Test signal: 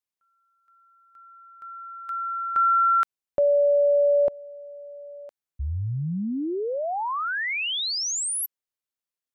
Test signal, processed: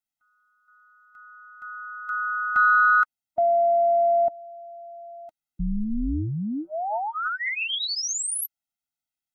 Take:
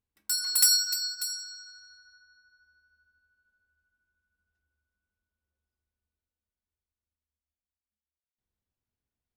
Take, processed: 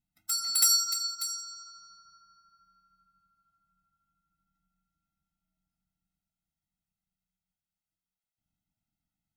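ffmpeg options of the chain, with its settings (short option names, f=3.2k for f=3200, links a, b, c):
-af "aeval=exprs='val(0)*sin(2*PI*110*n/s)':c=same,acontrast=42,afftfilt=real='re*eq(mod(floor(b*sr/1024/310),2),0)':imag='im*eq(mod(floor(b*sr/1024/310),2),0)':win_size=1024:overlap=0.75"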